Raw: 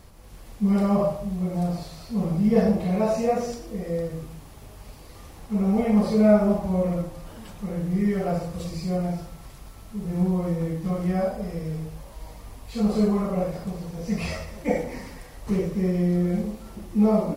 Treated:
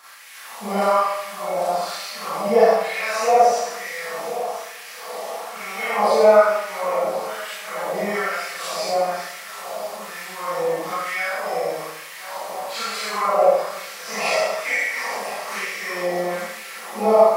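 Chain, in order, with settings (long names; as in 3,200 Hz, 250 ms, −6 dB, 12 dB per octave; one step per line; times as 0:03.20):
echo machine with several playback heads 346 ms, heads first and third, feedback 65%, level −18.5 dB
auto-filter high-pass sine 1.1 Hz 670–2,000 Hz
0:04.27–0:05.57: Chebyshev high-pass filter 270 Hz, order 2
four-comb reverb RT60 0.62 s, combs from 28 ms, DRR −8 dB
in parallel at −1.5 dB: downward compressor, threshold −28 dBFS, peak gain reduction 17.5 dB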